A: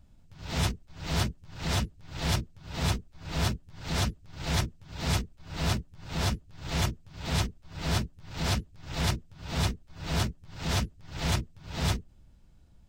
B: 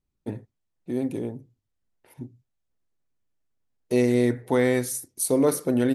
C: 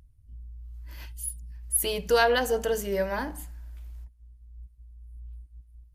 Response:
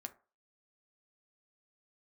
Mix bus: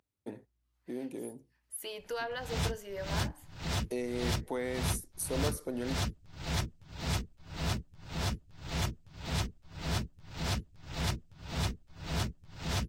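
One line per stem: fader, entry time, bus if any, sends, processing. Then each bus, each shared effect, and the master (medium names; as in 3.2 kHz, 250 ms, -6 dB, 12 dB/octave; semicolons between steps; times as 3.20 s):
-5.0 dB, 2.00 s, no bus, no send, none
-5.0 dB, 0.00 s, bus A, no send, none
-7.0 dB, 0.00 s, bus A, no send, low-pass 3.8 kHz 6 dB/octave; bass shelf 370 Hz -7 dB
bus A: 0.0 dB, Bessel high-pass 280 Hz, order 2; compression 2:1, threshold -38 dBFS, peak gain reduction 9 dB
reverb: none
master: none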